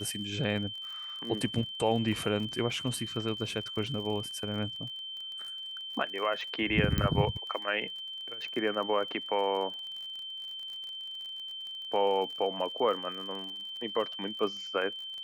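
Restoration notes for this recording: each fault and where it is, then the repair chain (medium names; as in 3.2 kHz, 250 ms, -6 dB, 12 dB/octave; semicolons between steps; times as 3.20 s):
crackle 43 per s -39 dBFS
whine 3.1 kHz -38 dBFS
6.98 s: pop -15 dBFS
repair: de-click; band-stop 3.1 kHz, Q 30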